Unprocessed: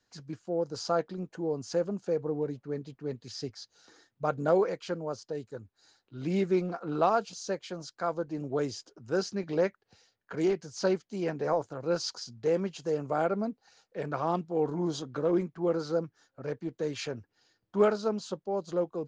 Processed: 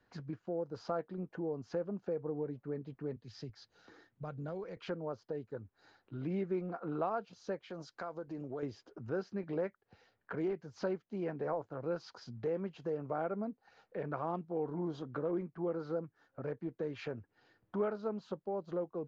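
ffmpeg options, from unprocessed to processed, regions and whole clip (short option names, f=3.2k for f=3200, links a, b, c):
-filter_complex "[0:a]asettb=1/sr,asplit=3[a][b][c];[a]atrim=end=3.164[d];[b]atrim=start=3.16:end=4.77,asetpts=PTS-STARTPTS,afade=t=in:d=0.004:c=qsin,afade=t=out:st=1.606:d=0.004:c=qsin,equalizer=f=860:w=0.4:g=-4.5,acrossover=split=140|3000[e][f][g];[f]acompressor=threshold=-59dB:ratio=1.5:attack=3.2:release=140:knee=2.83:detection=peak[h];[e][h][g]amix=inputs=3:normalize=0[i];[c]atrim=start=4.766[j];[d][i]acrossfade=d=0.004:c1=hsin:c2=qsin[k];[k][j]acrossfade=d=0.004:c1=qsin:c2=hsin,asettb=1/sr,asplit=3[l][m][n];[l]atrim=end=7.704[o];[m]atrim=start=7.7:end=8.63,asetpts=PTS-STARTPTS,afade=t=in:d=0.004:c=qsin,afade=t=out:st=0.926:d=0.004:c=qsin,bass=f=250:g=-3,treble=f=4k:g=11,acompressor=threshold=-42dB:ratio=2:attack=3.2:release=140:knee=1:detection=peak[p];[n]atrim=start=8.626[q];[o][p]acrossfade=d=0.004:c1=hsin:c2=qsin[r];[r][q]acrossfade=d=0.004:c1=qsin:c2=hsin,lowpass=2.1k,acompressor=threshold=-50dB:ratio=2,volume=5.5dB"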